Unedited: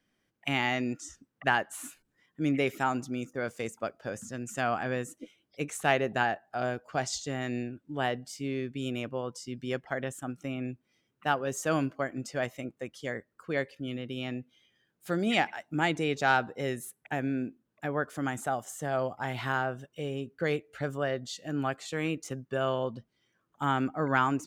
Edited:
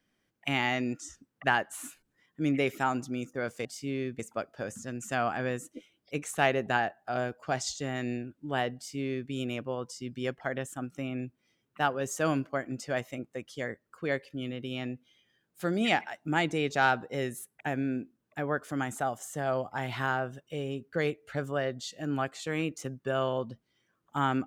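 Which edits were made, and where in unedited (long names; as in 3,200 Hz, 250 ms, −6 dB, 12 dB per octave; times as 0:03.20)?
0:08.22–0:08.76: duplicate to 0:03.65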